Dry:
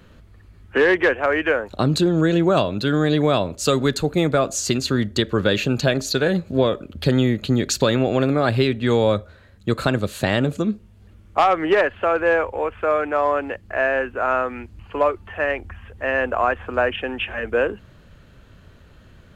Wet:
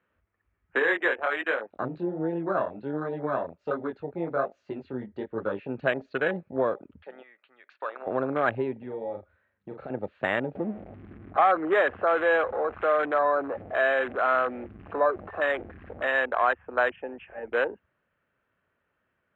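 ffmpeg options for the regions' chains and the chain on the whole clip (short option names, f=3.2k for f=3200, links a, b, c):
-filter_complex "[0:a]asettb=1/sr,asplit=3[a][b][c];[a]atrim=end=0.794[d];[b]atrim=start=0.79:end=5.69,asetpts=PTS-STARTPTS,afade=t=in:d=0.004:c=qsin,afade=t=out:st=4.896:d=0.004:c=qsin,lowpass=11k,flanger=delay=18:depth=6:speed=1.3[e];[c]atrim=start=5.686[f];[d][e]acrossfade=d=0.004:c1=hsin:c2=qsin[g];[g][f]acrossfade=d=0.004:c1=qsin:c2=hsin,asettb=1/sr,asplit=3[h][i][j];[h]atrim=end=7.024[k];[i]atrim=start=7.02:end=8.07,asetpts=PTS-STARTPTS,afade=t=in:d=0.004:c=qsin,afade=t=out:st=1.046:d=0.004:c=qsin,highpass=970,adynamicsmooth=sensitivity=1:basefreq=2.9k[l];[j]atrim=start=8.066[m];[k][l]acrossfade=d=0.004:c1=hsin:c2=qsin[n];[n][m]acrossfade=d=0.004:c1=qsin:c2=hsin,asettb=1/sr,asplit=3[o][p][q];[o]atrim=end=8.794[r];[p]atrim=start=8.79:end=9.9,asetpts=PTS-STARTPTS,afade=t=in:d=0.004:c=qsin,afade=t=out:st=1.106:d=0.004:c=qsin,acompressor=threshold=-26dB:ratio=3:attack=3.2:release=140:knee=1:detection=peak,asplit=2[s][t];[t]adelay=40,volume=-5dB[u];[s][u]amix=inputs=2:normalize=0,atrim=end_sample=48951[v];[q]atrim=start=9.896[w];[r][v]acrossfade=d=0.004:c1=hsin:c2=qsin[x];[x][w]acrossfade=d=0.004:c1=qsin:c2=hsin,asettb=1/sr,asplit=3[y][z][aa];[y]atrim=end=10.554[ab];[z]atrim=start=10.55:end=16.07,asetpts=PTS-STARTPTS,afade=t=in:d=0.004:c=qsin,afade=t=out:st=5.516:d=0.004:c=qsin,aeval=exprs='val(0)+0.5*0.0841*sgn(val(0))':c=same,lowpass=f=1.7k:p=1,bandreject=f=930:w=7.6[ac];[aa]atrim=start=16.066[ad];[ab][ac]acrossfade=d=0.004:c1=hsin:c2=qsin[ae];[ae][ad]acrossfade=d=0.004:c1=qsin:c2=hsin,lowpass=f=2.3k:w=0.5412,lowpass=f=2.3k:w=1.3066,afwtdn=0.0562,highpass=f=970:p=1"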